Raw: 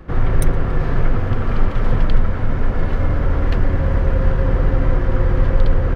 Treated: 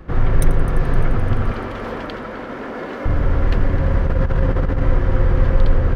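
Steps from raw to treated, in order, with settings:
0:01.52–0:03.06: high-pass filter 240 Hz 24 dB per octave
0:04.07–0:04.81: compressor whose output falls as the input rises −15 dBFS, ratio −0.5
echo machine with several playback heads 86 ms, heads first and third, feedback 73%, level −18.5 dB

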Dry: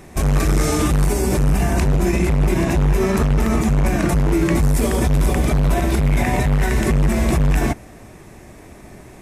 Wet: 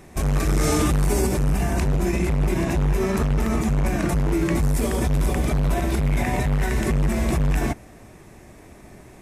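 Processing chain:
0:00.47–0:01.27: envelope flattener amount 70%
level −4.5 dB

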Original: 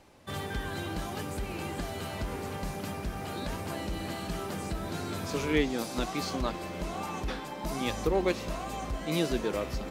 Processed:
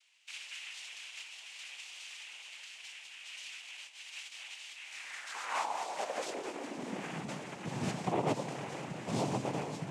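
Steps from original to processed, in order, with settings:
0:03.56–0:04.31: compressor whose output falls as the input rises −37 dBFS, ratio −0.5
0:06.25–0:06.66: gain into a clipping stage and back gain 32 dB
delay that swaps between a low-pass and a high-pass 104 ms, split 960 Hz, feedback 69%, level −8 dB
cochlear-implant simulation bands 4
high-pass filter sweep 2,800 Hz → 140 Hz, 0:04.78–0:07.28
level −6.5 dB

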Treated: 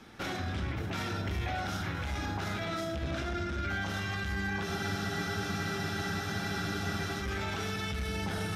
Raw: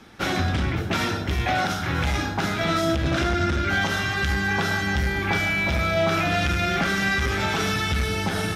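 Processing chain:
brickwall limiter −23 dBFS, peak gain reduction 11.5 dB
on a send: feedback echo with a low-pass in the loop 71 ms, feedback 74%, level −10 dB
on the sum: frozen spectrum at 0:04.66, 2.56 s
level −4.5 dB

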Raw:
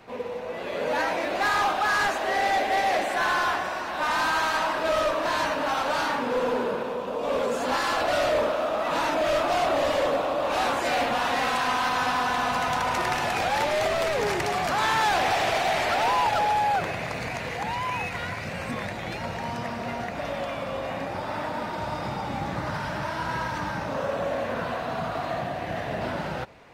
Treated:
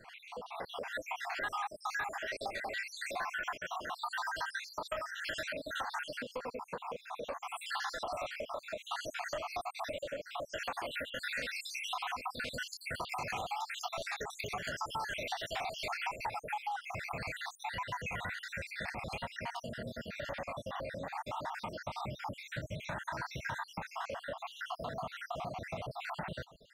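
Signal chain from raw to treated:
time-frequency cells dropped at random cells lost 69%
downward compressor, threshold −34 dBFS, peak gain reduction 12 dB
parametric band 320 Hz −7.5 dB 1.6 octaves

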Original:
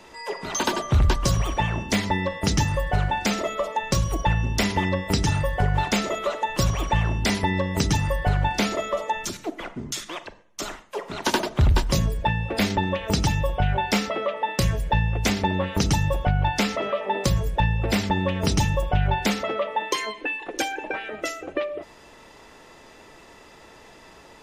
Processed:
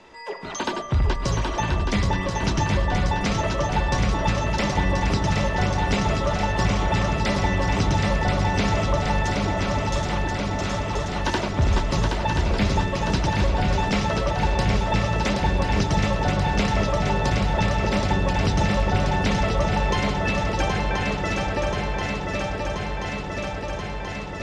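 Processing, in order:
in parallel at −12 dB: gain into a clipping stage and back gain 25.5 dB
on the sum: high-frequency loss of the air 82 metres
feedback echo with a long and a short gap by turns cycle 1,031 ms, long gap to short 3 to 1, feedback 76%, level −4 dB
level −3 dB

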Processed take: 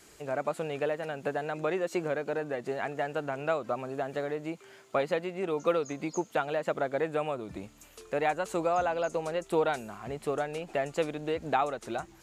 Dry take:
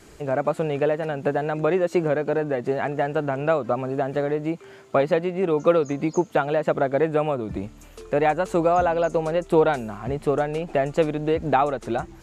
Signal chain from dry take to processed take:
spectral tilt +2 dB per octave
level −7 dB

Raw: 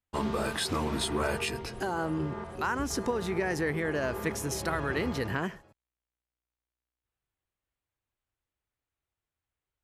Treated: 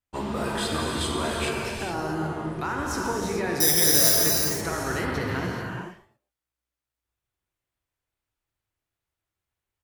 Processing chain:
far-end echo of a speakerphone 130 ms, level −16 dB
tape wow and flutter 80 cents
0:03.60–0:04.16: bad sample-rate conversion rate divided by 8×, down none, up zero stuff
reverb whose tail is shaped and stops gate 470 ms flat, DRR −2 dB
level −1 dB

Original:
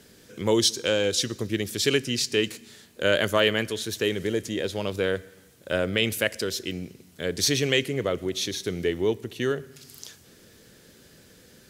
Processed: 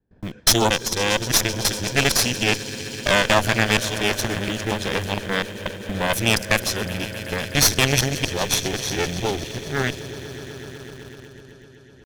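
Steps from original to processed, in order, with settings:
reversed piece by piece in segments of 229 ms
low-pass that shuts in the quiet parts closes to 840 Hz, open at −23.5 dBFS
noise gate with hold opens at −46 dBFS
low-shelf EQ 63 Hz +11.5 dB
comb filter 1.2 ms, depth 39%
echo that builds up and dies away 122 ms, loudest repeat 5, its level −17.5 dB
tempo change 0.97×
in parallel at −10.5 dB: bit-depth reduction 6 bits, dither none
on the sum: dynamic equaliser 5,800 Hz, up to +6 dB, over −42 dBFS, Q 3.7
harmonic generator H 6 −11 dB, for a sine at −3.5 dBFS

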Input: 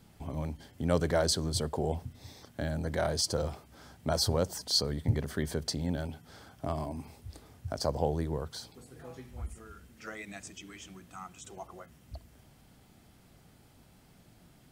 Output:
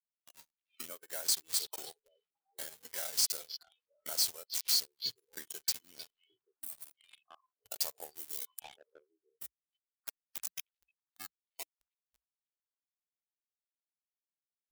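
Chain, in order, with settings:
hold until the input has moved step −30.5 dBFS
mains-hum notches 60/120/180/240/300 Hz
echo through a band-pass that steps 309 ms, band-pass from 2,800 Hz, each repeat −1.4 octaves, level −8 dB
downward compressor 12 to 1, threshold −41 dBFS, peak gain reduction 19.5 dB
0:06.60–0:06.93: time-frequency box erased 340–7,800 Hz
0:08.13–0:10.56: high-shelf EQ 5,200 Hz → 10,000 Hz +4.5 dB
noise reduction from a noise print of the clip's start 29 dB
first difference
leveller curve on the samples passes 3
level +9 dB

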